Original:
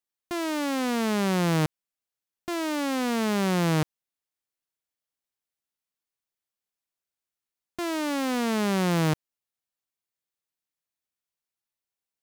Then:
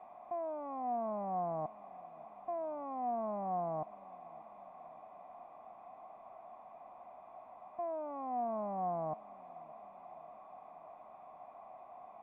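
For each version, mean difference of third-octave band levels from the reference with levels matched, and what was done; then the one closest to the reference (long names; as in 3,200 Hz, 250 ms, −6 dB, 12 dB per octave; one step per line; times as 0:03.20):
17.5 dB: linear delta modulator 32 kbit/s, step −32 dBFS
formant resonators in series a
hollow resonant body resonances 220/620/2,000 Hz, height 11 dB, ringing for 25 ms
on a send: tape delay 590 ms, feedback 66%, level −19.5 dB
on the sum: level −2 dB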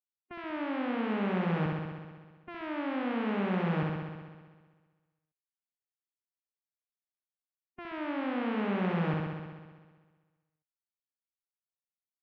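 11.5 dB: low-pass filter 2,700 Hz 24 dB per octave
mains-hum notches 60/120 Hz
noise reduction from a noise print of the clip's start 12 dB
on a send: flutter between parallel walls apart 11.1 metres, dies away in 1.5 s
on the sum: level −8.5 dB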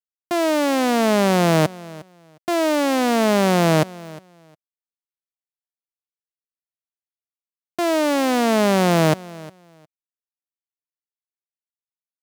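2.0 dB: high-pass filter 150 Hz
parametric band 640 Hz +8.5 dB 0.46 octaves
bit reduction 9 bits
on a send: repeating echo 358 ms, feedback 19%, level −20 dB
on the sum: level +7 dB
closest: third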